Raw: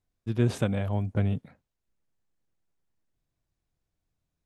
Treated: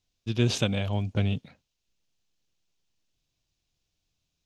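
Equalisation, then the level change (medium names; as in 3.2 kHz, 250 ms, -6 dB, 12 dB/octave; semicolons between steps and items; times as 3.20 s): high-order bell 4.1 kHz +12.5 dB; 0.0 dB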